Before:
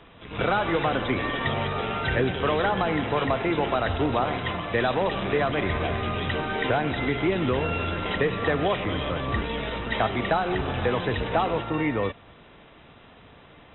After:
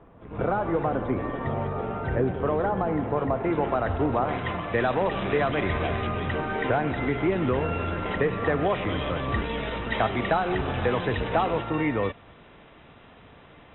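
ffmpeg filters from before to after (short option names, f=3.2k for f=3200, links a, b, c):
-af "asetnsamples=n=441:p=0,asendcmd='3.44 lowpass f 1500;4.29 lowpass f 2400;5.15 lowpass f 3400;6.07 lowpass f 2100;8.76 lowpass f 3500',lowpass=1k"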